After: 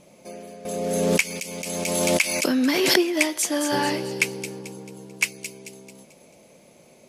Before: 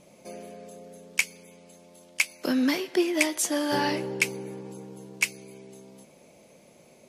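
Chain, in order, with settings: feedback echo behind a high-pass 220 ms, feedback 43%, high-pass 3.7 kHz, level -7 dB; 0.65–3.02 s: swell ahead of each attack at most 24 dB/s; trim +2.5 dB

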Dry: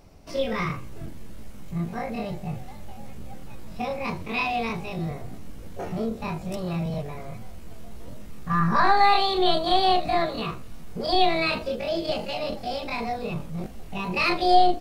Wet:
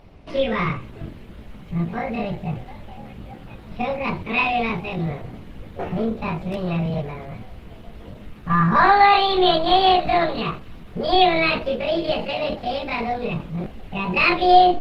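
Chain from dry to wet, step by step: resonant high shelf 4.5 kHz -11.5 dB, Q 1.5; trim +5 dB; Opus 16 kbps 48 kHz

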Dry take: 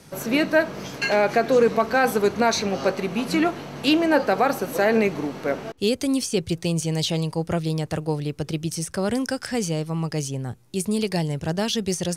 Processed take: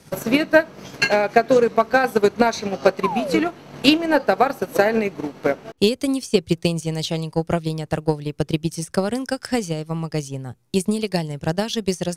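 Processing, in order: painted sound fall, 3.03–3.40 s, 400–1100 Hz -24 dBFS; transient shaper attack +11 dB, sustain -6 dB; trim -2 dB

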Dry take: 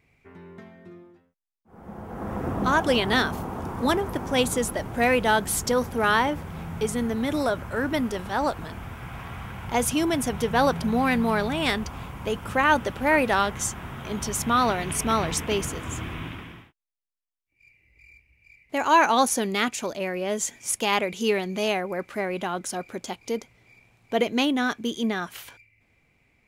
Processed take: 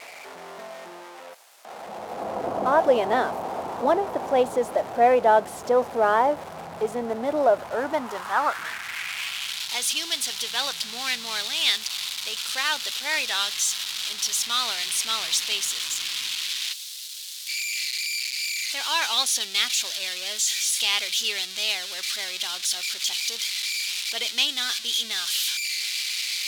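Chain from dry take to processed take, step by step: zero-crossing glitches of -15.5 dBFS; band-pass sweep 660 Hz -> 3.8 kHz, 7.69–9.65 s; trim +8.5 dB

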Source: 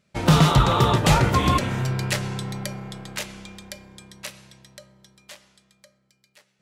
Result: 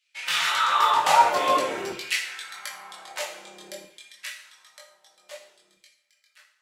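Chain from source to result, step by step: chorus voices 4, 0.38 Hz, delay 21 ms, depth 4.4 ms; LFO high-pass saw down 0.52 Hz 330–2900 Hz; two-slope reverb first 0.52 s, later 2.2 s, from -25 dB, DRR 2 dB; trim -1 dB

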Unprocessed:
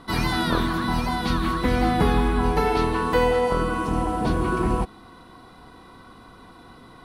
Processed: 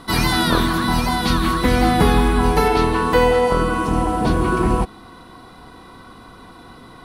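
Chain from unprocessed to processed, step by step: treble shelf 4.7 kHz +7.5 dB, from 2.68 s +2 dB; trim +5 dB

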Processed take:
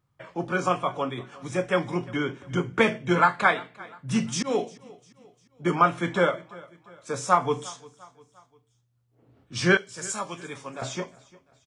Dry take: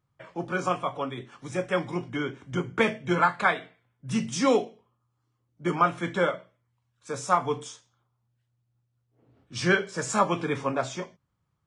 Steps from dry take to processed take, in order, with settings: 4.09–4.59 s: slow attack 220 ms; 9.77–10.82 s: pre-emphasis filter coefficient 0.8; feedback delay 350 ms, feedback 47%, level -22 dB; trim +2.5 dB

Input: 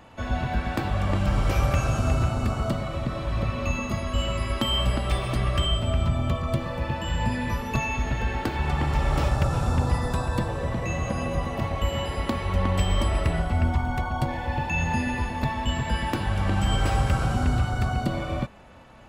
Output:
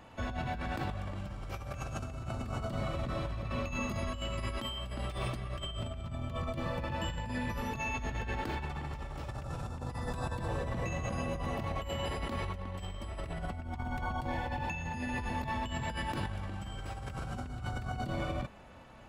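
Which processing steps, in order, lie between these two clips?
compressor with a negative ratio -29 dBFS, ratio -1; trim -8 dB

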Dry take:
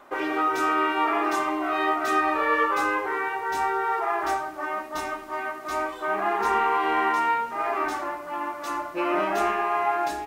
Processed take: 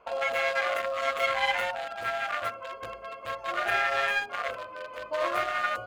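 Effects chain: local Wiener filter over 41 samples; dynamic bell 2.5 kHz, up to -4 dB, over -44 dBFS, Q 1.1; wide varispeed 1.75×

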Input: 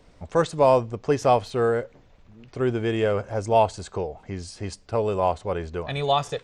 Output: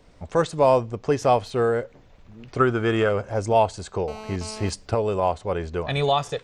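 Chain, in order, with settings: recorder AGC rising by 6.2 dB/s; 2.58–3.09 s: peaking EQ 1.3 kHz +14.5 dB 0.41 oct; 4.08–4.69 s: mobile phone buzz -38 dBFS

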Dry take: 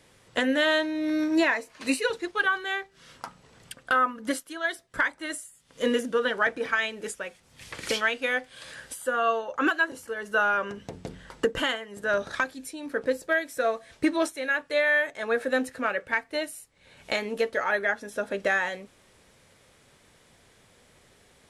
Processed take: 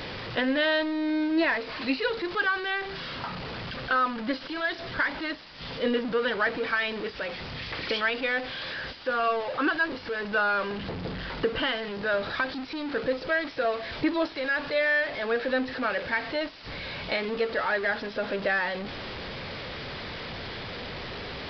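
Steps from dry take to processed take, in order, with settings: jump at every zero crossing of -26.5 dBFS; resampled via 11.025 kHz; trim -3.5 dB

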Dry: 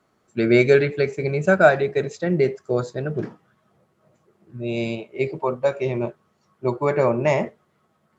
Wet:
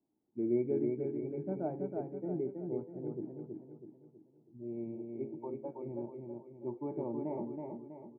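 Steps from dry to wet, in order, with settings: cascade formant filter u; treble shelf 2.6 kHz +8 dB; feedback delay 324 ms, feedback 44%, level -4 dB; trim -7 dB

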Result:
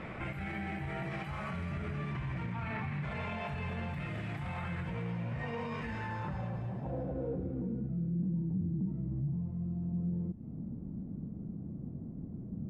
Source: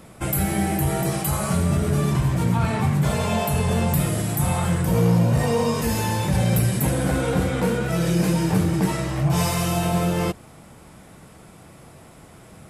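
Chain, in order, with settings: dynamic bell 450 Hz, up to -4 dB, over -33 dBFS, Q 1.1; compression, threshold -32 dBFS, peak gain reduction 16 dB; peak limiter -32.5 dBFS, peak gain reduction 11 dB; low-pass sweep 2.2 kHz -> 230 Hz, 5.79–7.94 s; on a send: feedback echo behind a high-pass 214 ms, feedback 53%, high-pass 2.3 kHz, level -4.5 dB; on the sum: trim +2 dB

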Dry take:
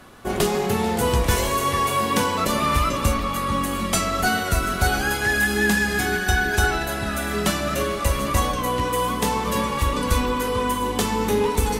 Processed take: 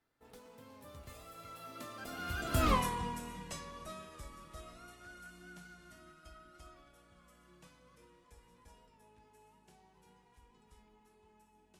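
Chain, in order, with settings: Doppler pass-by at 2.71 s, 57 m/s, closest 3.8 m; trim -2.5 dB

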